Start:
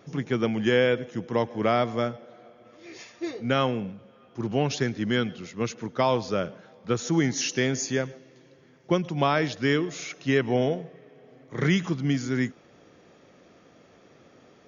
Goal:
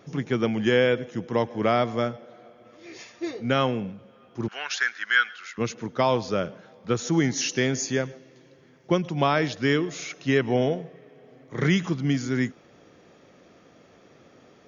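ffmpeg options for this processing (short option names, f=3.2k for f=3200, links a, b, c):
-filter_complex "[0:a]asettb=1/sr,asplit=3[a][b][c];[a]atrim=end=4.484[d];[b]atrim=start=4.48:end=5.58,asetpts=PTS-STARTPTS,afade=t=in:d=0.004:c=qsin,afade=t=out:st=1.096:d=0.004:c=qsin,highpass=f=1.5k:t=q:w=4.7[e];[c]atrim=start=5.576[f];[d][e]acrossfade=d=0.004:c1=hsin:c2=qsin[g];[g][f]acrossfade=d=0.004:c1=qsin:c2=hsin,volume=1dB"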